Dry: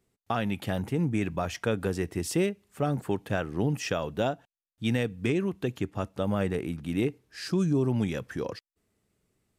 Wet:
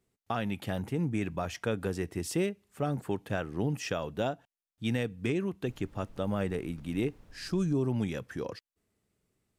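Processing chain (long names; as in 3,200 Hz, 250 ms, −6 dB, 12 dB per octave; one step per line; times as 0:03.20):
0:05.65–0:07.72: background noise brown −49 dBFS
level −3.5 dB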